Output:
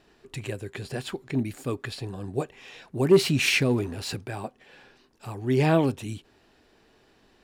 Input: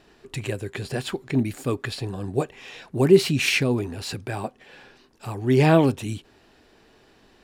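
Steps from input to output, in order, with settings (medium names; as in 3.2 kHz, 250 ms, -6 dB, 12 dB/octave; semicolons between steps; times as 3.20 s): 3.11–4.24 s: waveshaping leveller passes 1; trim -4.5 dB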